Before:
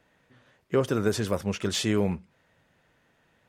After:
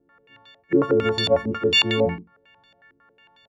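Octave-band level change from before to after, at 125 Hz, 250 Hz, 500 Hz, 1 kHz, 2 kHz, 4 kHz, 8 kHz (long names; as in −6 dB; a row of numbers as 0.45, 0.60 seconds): 0.0, +3.5, +7.0, +7.5, +11.0, +12.0, −6.0 decibels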